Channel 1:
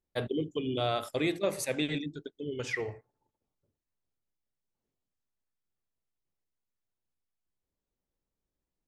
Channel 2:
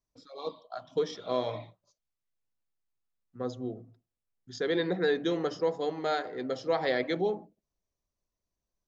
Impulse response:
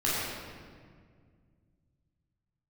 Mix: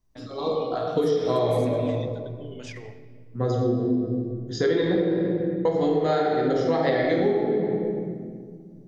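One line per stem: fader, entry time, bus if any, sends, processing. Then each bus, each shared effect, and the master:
−8.0 dB, 0.00 s, send −21 dB, low-pass that shuts in the quiet parts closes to 1,900 Hz, open at −27 dBFS; high-shelf EQ 4,400 Hz +9 dB; compressor whose output falls as the input rises −36 dBFS, ratio −1
+1.5 dB, 0.00 s, muted 0:04.96–0:05.65, send −4.5 dB, low-shelf EQ 500 Hz +9.5 dB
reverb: on, RT60 1.9 s, pre-delay 14 ms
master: downward compressor 6 to 1, threshold −19 dBFS, peak gain reduction 10.5 dB

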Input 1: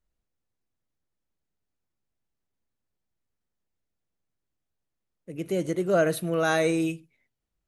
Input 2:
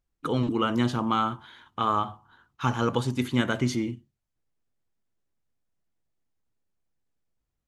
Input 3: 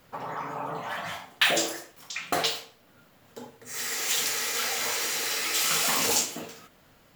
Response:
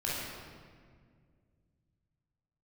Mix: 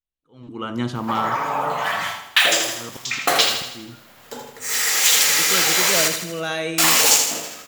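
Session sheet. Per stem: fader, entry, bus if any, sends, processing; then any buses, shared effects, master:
−16.5 dB, 0.00 s, no send, echo send −11.5 dB, parametric band 3,100 Hz +12.5 dB 0.86 octaves
−13.5 dB, 0.00 s, no send, echo send −17.5 dB, noise gate with hold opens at −48 dBFS; volume swells 584 ms
−2.0 dB, 0.95 s, muted 0:06.08–0:06.78, no send, echo send −6.5 dB, low-shelf EQ 440 Hz −10.5 dB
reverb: not used
echo: repeating echo 80 ms, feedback 52%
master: automatic gain control gain up to 14 dB

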